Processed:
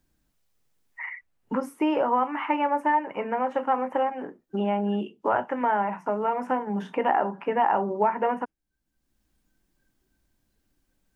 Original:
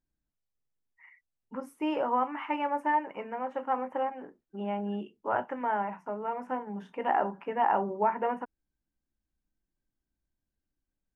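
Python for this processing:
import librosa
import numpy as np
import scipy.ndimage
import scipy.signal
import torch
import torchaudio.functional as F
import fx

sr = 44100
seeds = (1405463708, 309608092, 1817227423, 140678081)

y = fx.noise_reduce_blind(x, sr, reduce_db=11)
y = fx.band_squash(y, sr, depth_pct=70)
y = y * librosa.db_to_amplitude(5.5)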